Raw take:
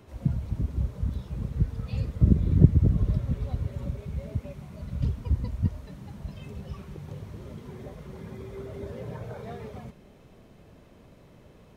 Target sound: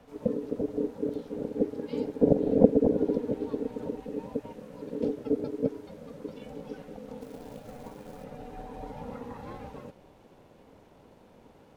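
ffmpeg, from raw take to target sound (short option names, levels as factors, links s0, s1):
-filter_complex "[0:a]aeval=exprs='val(0)*sin(2*PI*360*n/s)':c=same,asettb=1/sr,asplit=3[s0][s1][s2];[s0]atrim=end=7.214[s3];[s1]atrim=start=7.21:end=8.24,asetpts=PTS-STARTPTS,afade=t=in:d=0.004:c=qsin,afade=t=out:st=1.026:d=0.004:c=qsin,acrusher=bits=4:mode=log:mix=0:aa=0.000001[s4];[s2]atrim=start=8.236[s5];[s3][s4]acrossfade=d=0.004:c1=hsin:c2=qsin[s6];[s6][s5]acrossfade=d=0.004:c1=qsin:c2=hsin"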